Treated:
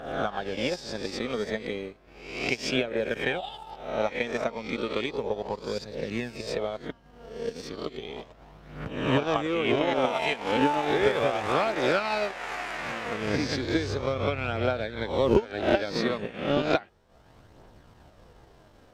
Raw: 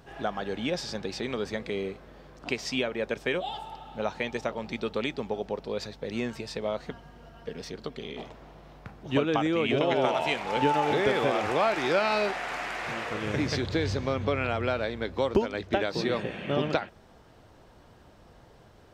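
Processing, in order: spectral swells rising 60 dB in 0.84 s; transient shaper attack +8 dB, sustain -9 dB; phaser 0.34 Hz, delay 4.7 ms, feedback 30%; gain -3 dB

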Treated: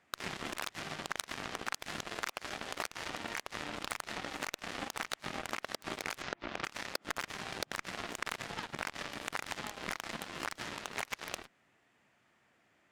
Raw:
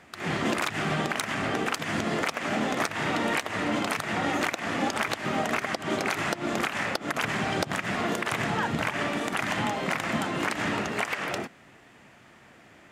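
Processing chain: 6.22–6.65 inverse Chebyshev low-pass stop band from 6000 Hz, stop band 40 dB; low shelf 490 Hz -4.5 dB; 2.04–3.09 Bessel high-pass 320 Hz, order 8; compressor 8:1, threshold -34 dBFS, peak gain reduction 11.5 dB; added harmonics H 3 -28 dB, 7 -17 dB, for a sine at -20 dBFS; gain +4 dB

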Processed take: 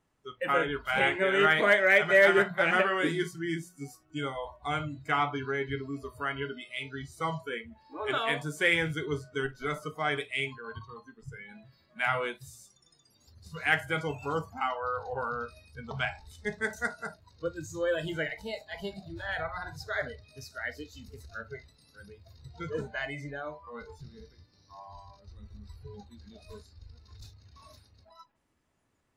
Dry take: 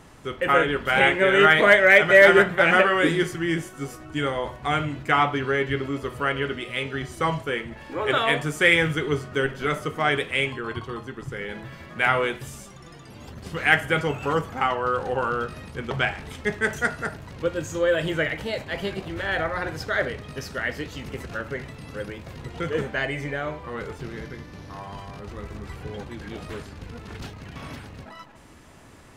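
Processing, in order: spectral noise reduction 19 dB; de-hum 58.76 Hz, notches 3; gain -7.5 dB

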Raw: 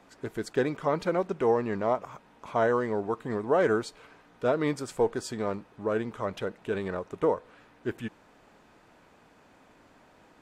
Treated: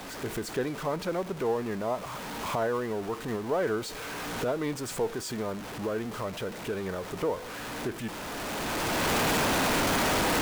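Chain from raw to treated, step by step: zero-crossing step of -31 dBFS; recorder AGC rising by 13 dB/s; gain -5.5 dB

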